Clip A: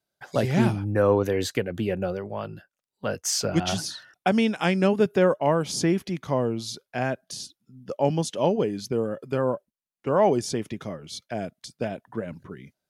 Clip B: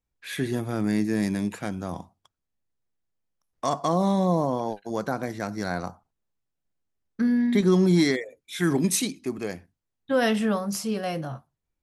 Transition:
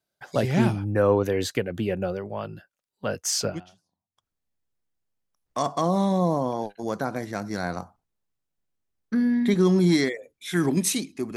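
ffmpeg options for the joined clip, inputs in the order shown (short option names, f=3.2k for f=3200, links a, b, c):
-filter_complex "[0:a]apad=whole_dur=11.36,atrim=end=11.36,atrim=end=4.26,asetpts=PTS-STARTPTS[a];[1:a]atrim=start=1.55:end=9.43,asetpts=PTS-STARTPTS[b];[a][b]acrossfade=d=0.78:c1=exp:c2=exp"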